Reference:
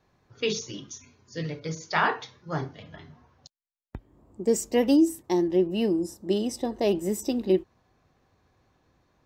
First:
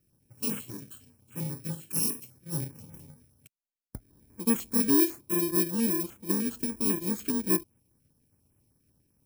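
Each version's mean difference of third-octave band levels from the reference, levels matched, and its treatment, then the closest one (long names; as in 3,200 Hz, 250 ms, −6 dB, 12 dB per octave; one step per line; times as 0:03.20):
11.0 dB: samples in bit-reversed order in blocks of 64 samples
graphic EQ with 10 bands 125 Hz +4 dB, 250 Hz +5 dB, 1,000 Hz −3 dB, 4,000 Hz −4 dB
notch on a step sequencer 10 Hz 920–4,400 Hz
level −4.5 dB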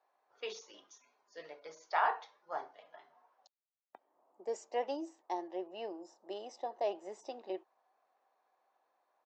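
7.5 dB: downsampling to 16,000 Hz
four-pole ladder high-pass 620 Hz, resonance 45%
spectral tilt −3 dB per octave
level −1 dB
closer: second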